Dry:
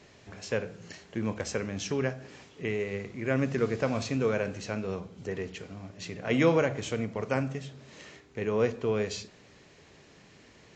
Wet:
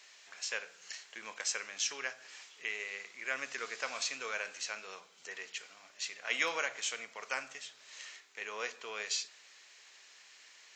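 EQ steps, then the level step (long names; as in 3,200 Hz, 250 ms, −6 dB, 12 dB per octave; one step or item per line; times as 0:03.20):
high-pass filter 1,300 Hz 12 dB per octave
high-shelf EQ 4,300 Hz +7.5 dB
0.0 dB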